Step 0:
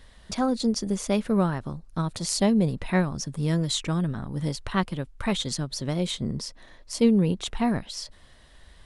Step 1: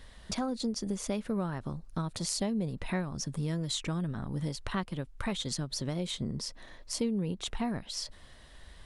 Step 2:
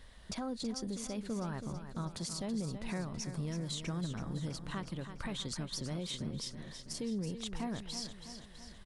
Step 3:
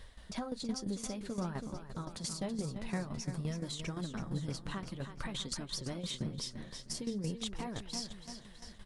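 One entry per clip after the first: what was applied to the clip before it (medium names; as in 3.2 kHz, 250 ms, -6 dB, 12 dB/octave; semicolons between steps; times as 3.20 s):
compression 3:1, threshold -32 dBFS, peak gain reduction 13 dB
peak limiter -26 dBFS, peak gain reduction 11 dB; on a send: feedback delay 327 ms, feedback 56%, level -9.5 dB; on the sum: trim -4 dB
flange 0.52 Hz, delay 1.6 ms, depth 8.9 ms, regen -47%; tremolo saw down 5.8 Hz, depth 70%; trim +7.5 dB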